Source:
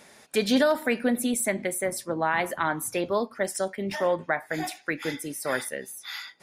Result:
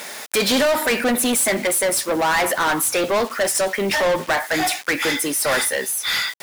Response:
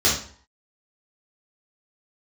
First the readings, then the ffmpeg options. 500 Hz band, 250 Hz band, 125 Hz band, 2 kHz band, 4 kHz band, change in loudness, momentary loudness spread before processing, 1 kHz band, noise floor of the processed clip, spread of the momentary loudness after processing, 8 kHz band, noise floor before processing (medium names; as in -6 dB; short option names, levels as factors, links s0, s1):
+6.5 dB, +4.0 dB, +3.5 dB, +9.5 dB, +13.0 dB, +8.5 dB, 9 LU, +8.0 dB, -36 dBFS, 3 LU, +12.5 dB, -55 dBFS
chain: -filter_complex "[0:a]acrusher=bits=8:mix=0:aa=0.000001,asplit=2[s0][s1];[s1]highpass=f=720:p=1,volume=20,asoftclip=type=tanh:threshold=0.266[s2];[s0][s2]amix=inputs=2:normalize=0,lowpass=f=3200:p=1,volume=0.501,crystalizer=i=1.5:c=0"